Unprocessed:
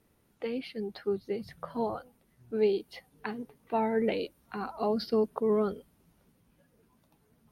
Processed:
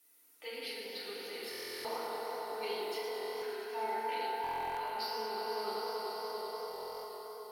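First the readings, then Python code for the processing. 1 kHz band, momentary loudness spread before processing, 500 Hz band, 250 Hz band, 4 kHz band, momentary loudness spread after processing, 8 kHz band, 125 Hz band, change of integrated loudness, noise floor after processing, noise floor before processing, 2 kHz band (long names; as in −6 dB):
+1.0 dB, 12 LU, −8.0 dB, −19.0 dB, +5.0 dB, 6 LU, can't be measured, below −15 dB, −6.5 dB, −64 dBFS, −69 dBFS, +1.5 dB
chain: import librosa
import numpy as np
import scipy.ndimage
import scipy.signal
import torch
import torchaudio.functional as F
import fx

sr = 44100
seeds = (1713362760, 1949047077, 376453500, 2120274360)

y = fx.highpass(x, sr, hz=240.0, slope=6)
y = np.diff(y, prepend=0.0)
y = fx.notch(y, sr, hz=1700.0, q=26.0)
y = fx.echo_swell(y, sr, ms=96, loudest=5, wet_db=-11.0)
y = fx.rev_fdn(y, sr, rt60_s=2.9, lf_ratio=1.0, hf_ratio=0.25, size_ms=20.0, drr_db=-8.0)
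y = fx.rider(y, sr, range_db=4, speed_s=2.0)
y = fx.buffer_glitch(y, sr, at_s=(1.5, 3.07, 4.42, 6.69), block=1024, repeats=14)
y = fx.echo_warbled(y, sr, ms=113, feedback_pct=66, rate_hz=2.8, cents=150, wet_db=-9.0)
y = y * 10.0 ** (1.0 / 20.0)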